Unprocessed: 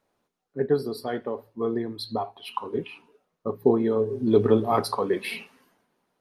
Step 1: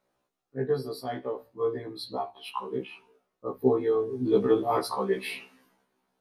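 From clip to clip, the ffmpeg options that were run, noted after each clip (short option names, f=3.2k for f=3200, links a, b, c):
-af "afftfilt=real='re*1.73*eq(mod(b,3),0)':imag='im*1.73*eq(mod(b,3),0)':win_size=2048:overlap=0.75"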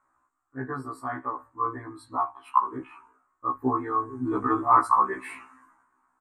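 -af "firequalizer=gain_entry='entry(100,0);entry(190,-17);entry(280,2);entry(440,-17);entry(1100,13);entry(3200,-22);entry(4900,-21);entry(7700,5);entry(11000,-17)':delay=0.05:min_phase=1,volume=3.5dB"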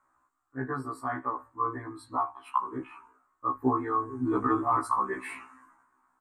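-filter_complex "[0:a]acrossover=split=390|3000[a][b][c];[b]acompressor=threshold=-24dB:ratio=6[d];[a][d][c]amix=inputs=3:normalize=0"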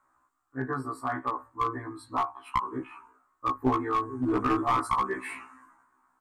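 -af "aeval=exprs='clip(val(0),-1,0.0631)':c=same,volume=1.5dB"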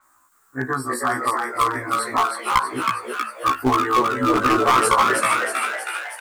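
-filter_complex "[0:a]crystalizer=i=6.5:c=0,asplit=9[a][b][c][d][e][f][g][h][i];[b]adelay=319,afreqshift=110,volume=-3.5dB[j];[c]adelay=638,afreqshift=220,volume=-8.1dB[k];[d]adelay=957,afreqshift=330,volume=-12.7dB[l];[e]adelay=1276,afreqshift=440,volume=-17.2dB[m];[f]adelay=1595,afreqshift=550,volume=-21.8dB[n];[g]adelay=1914,afreqshift=660,volume=-26.4dB[o];[h]adelay=2233,afreqshift=770,volume=-31dB[p];[i]adelay=2552,afreqshift=880,volume=-35.6dB[q];[a][j][k][l][m][n][o][p][q]amix=inputs=9:normalize=0,adynamicequalizer=threshold=0.00708:dfrequency=6800:dqfactor=0.7:tfrequency=6800:tqfactor=0.7:attack=5:release=100:ratio=0.375:range=2.5:mode=cutabove:tftype=highshelf,volume=5dB"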